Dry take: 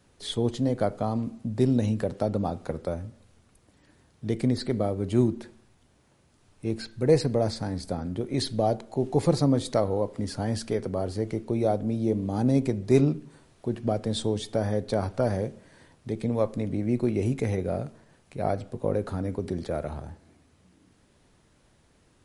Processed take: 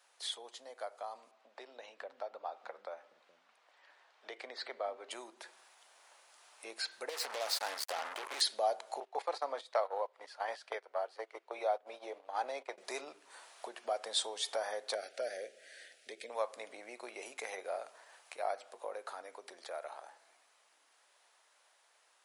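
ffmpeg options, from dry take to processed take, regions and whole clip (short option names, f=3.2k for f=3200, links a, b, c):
-filter_complex "[0:a]asettb=1/sr,asplit=3[a][b][c];[a]atrim=end=1.314[d];[b]atrim=start=1.31:end=5.11,asetpts=PTS-STARTPTS,afade=t=in:d=0.004:c=qsin,afade=t=out:st=3.796:d=0.004:c=qsin,highpass=120,lowpass=3.5k,acrossover=split=220[e][f];[e]adelay=420[g];[g][f]amix=inputs=2:normalize=0,atrim=end_sample=167580[h];[c]atrim=start=5.106[i];[d][h]acrossfade=d=0.004:c1=hsin:c2=qsin[j];[j][i]acrossfade=d=0.004:c1=qsin:c2=hsin,asettb=1/sr,asplit=3[k][l][m];[k]atrim=end=7.094[n];[l]atrim=start=7.09:end=8.41,asetpts=PTS-STARTPTS,afade=t=in:d=0.004:c=qsin,afade=t=out:st=1.316:d=0.004:c=qsin,highpass=110,acompressor=threshold=-27dB:ratio=8:attack=3.2:release=140:knee=1:detection=peak,acrusher=bits=5:mix=0:aa=0.5[o];[m]atrim=start=8.406[p];[n][o]acrossfade=d=0.004:c1=hsin:c2=qsin[q];[q][p]acrossfade=d=0.004:c1=qsin:c2=hsin,asettb=1/sr,asplit=3[r][s][t];[r]atrim=end=9.004[u];[s]atrim=start=9:end=12.78,asetpts=PTS-STARTPTS,afade=t=in:d=0.004:c=qsin,afade=t=out:st=3.776:d=0.004:c=qsin,agate=range=-16dB:threshold=-28dB:ratio=16:release=100:detection=peak,acrossover=split=330 4200:gain=0.2 1 0.2[v][w][x];[v][w][x]amix=inputs=3:normalize=0[y];[t]atrim=start=12.776[z];[u][y]acrossfade=d=0.004:c1=hsin:c2=qsin[aa];[aa][z]acrossfade=d=0.004:c1=qsin:c2=hsin,asettb=1/sr,asplit=3[ab][ac][ad];[ab]atrim=end=14.954[ae];[ac]atrim=start=14.95:end=16.3,asetpts=PTS-STARTPTS,afade=t=in:d=0.004:c=qsin,afade=t=out:st=1.346:d=0.004:c=qsin,asuperstop=centerf=1000:order=4:qfactor=0.9,highshelf=f=4.9k:g=-4.5[af];[ad]atrim=start=16.296[ag];[ae][af]acrossfade=d=0.004:c1=hsin:c2=qsin[ah];[ah][ag]acrossfade=d=0.004:c1=qsin:c2=hsin,acompressor=threshold=-38dB:ratio=2,highpass=f=680:w=0.5412,highpass=f=680:w=1.3066,dynaudnorm=f=700:g=13:m=8.5dB,volume=-1dB"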